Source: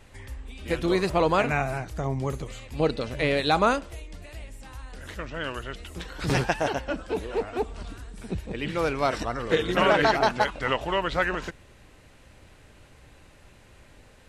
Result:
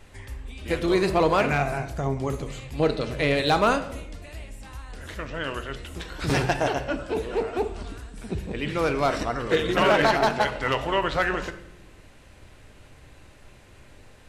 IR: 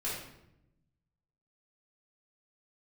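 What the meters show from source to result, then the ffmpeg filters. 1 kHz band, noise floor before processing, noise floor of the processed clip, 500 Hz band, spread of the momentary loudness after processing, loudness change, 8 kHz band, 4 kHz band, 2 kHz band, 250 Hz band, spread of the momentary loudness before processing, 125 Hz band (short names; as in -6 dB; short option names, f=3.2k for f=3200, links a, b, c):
+1.0 dB, -54 dBFS, -51 dBFS, +1.5 dB, 19 LU, +1.5 dB, +2.0 dB, +1.5 dB, +1.0 dB, +2.0 dB, 20 LU, +1.5 dB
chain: -filter_complex "[0:a]asoftclip=type=hard:threshold=-15dB,asplit=2[a][b];[1:a]atrim=start_sample=2205[c];[b][c]afir=irnorm=-1:irlink=0,volume=-11dB[d];[a][d]amix=inputs=2:normalize=0"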